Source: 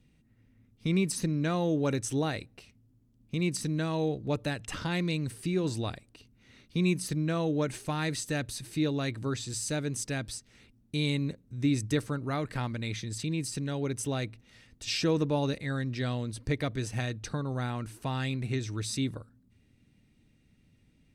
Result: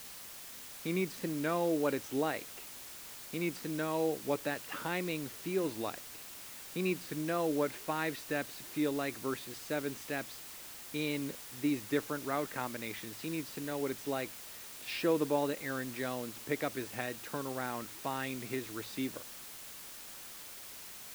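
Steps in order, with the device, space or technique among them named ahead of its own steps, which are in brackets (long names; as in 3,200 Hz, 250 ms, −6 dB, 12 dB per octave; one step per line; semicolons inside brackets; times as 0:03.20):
wax cylinder (band-pass filter 320–2,400 Hz; tape wow and flutter; white noise bed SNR 11 dB)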